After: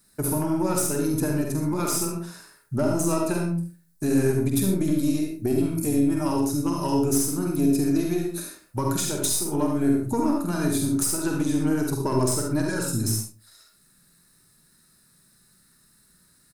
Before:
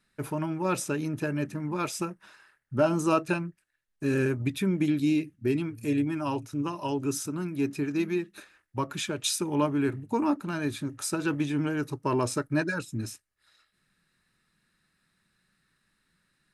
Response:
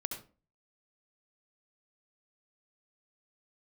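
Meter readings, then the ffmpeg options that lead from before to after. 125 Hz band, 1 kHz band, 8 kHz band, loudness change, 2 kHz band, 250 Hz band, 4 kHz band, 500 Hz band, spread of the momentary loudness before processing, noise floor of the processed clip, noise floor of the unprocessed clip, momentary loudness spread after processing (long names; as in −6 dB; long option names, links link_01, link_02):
+5.5 dB, +1.5 dB, +10.0 dB, +5.0 dB, −2.0 dB, +5.5 dB, +2.5 dB, +3.5 dB, 8 LU, −60 dBFS, −75 dBFS, 6 LU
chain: -filter_complex "[0:a]aexciter=amount=2.3:drive=8.7:freq=4000,asplit=2[link_01][link_02];[link_02]adelay=47,volume=-6dB[link_03];[link_01][link_03]amix=inputs=2:normalize=0,aeval=exprs='0.531*(cos(1*acos(clip(val(0)/0.531,-1,1)))-cos(1*PI/2))+0.0266*(cos(8*acos(clip(val(0)/0.531,-1,1)))-cos(8*PI/2))':channel_layout=same,acompressor=threshold=-30dB:ratio=4,equalizer=frequency=2900:width=0.57:gain=-8.5[link_04];[1:a]atrim=start_sample=2205[link_05];[link_04][link_05]afir=irnorm=-1:irlink=0,volume=8.5dB"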